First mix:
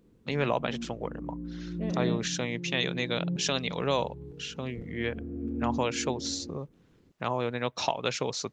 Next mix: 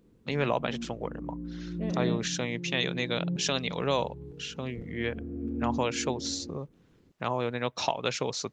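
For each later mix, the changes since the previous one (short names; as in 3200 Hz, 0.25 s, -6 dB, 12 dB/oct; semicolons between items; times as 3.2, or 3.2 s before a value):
none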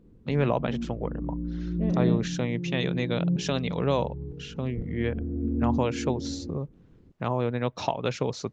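master: add tilt -2.5 dB/oct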